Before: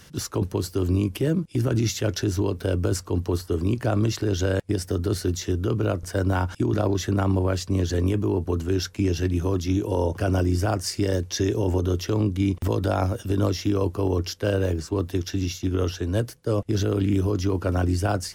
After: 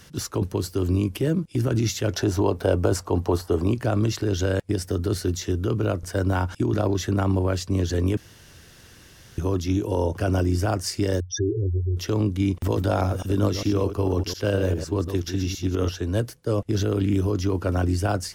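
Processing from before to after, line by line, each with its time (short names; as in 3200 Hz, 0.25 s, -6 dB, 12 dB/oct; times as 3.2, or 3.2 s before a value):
2.13–3.73 bell 760 Hz +10.5 dB 1.3 oct
8.17–9.38 room tone
11.2–11.97 spectral contrast raised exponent 3.9
12.52–15.89 reverse delay 0.101 s, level -8.5 dB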